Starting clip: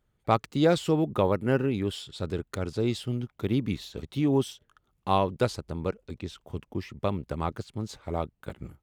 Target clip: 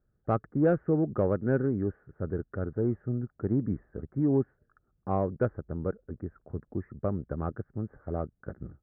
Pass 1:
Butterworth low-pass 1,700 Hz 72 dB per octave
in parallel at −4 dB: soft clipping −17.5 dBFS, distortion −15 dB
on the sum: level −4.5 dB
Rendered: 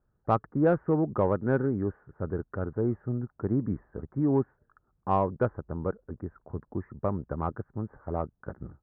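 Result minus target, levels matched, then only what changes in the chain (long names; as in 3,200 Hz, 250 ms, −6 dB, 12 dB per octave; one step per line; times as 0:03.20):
1,000 Hz band +5.0 dB
add after Butterworth low-pass: parametric band 960 Hz −12.5 dB 0.55 octaves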